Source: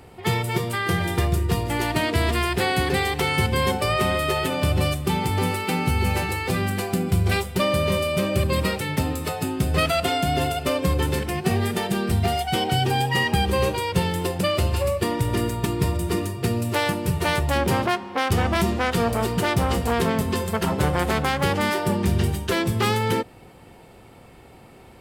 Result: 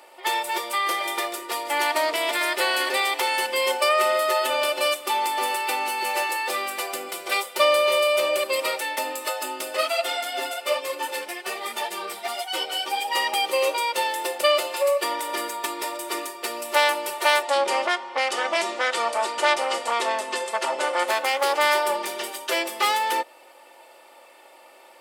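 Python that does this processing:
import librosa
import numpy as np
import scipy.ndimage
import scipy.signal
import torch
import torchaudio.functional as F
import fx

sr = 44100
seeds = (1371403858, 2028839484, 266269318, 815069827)

y = fx.echo_throw(x, sr, start_s=1.83, length_s=0.57, ms=450, feedback_pct=45, wet_db=-10.0)
y = fx.ensemble(y, sr, at=(9.76, 13.06), fade=0.02)
y = fx.lowpass(y, sr, hz=9300.0, slope=24, at=(17.42, 21.08))
y = scipy.signal.sosfilt(scipy.signal.butter(4, 500.0, 'highpass', fs=sr, output='sos'), y)
y = fx.notch(y, sr, hz=1600.0, q=11.0)
y = y + 0.66 * np.pad(y, (int(3.4 * sr / 1000.0), 0))[:len(y)]
y = y * librosa.db_to_amplitude(1.0)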